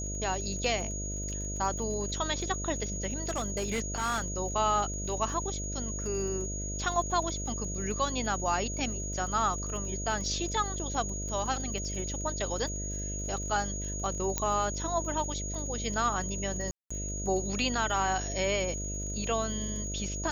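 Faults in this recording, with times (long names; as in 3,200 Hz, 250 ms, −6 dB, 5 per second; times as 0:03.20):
mains buzz 50 Hz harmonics 13 −37 dBFS
surface crackle 38 per second −40 dBFS
whistle 6,700 Hz −37 dBFS
0:03.18–0:04.26: clipping −26.5 dBFS
0:14.38: click −12 dBFS
0:16.71–0:16.91: drop-out 195 ms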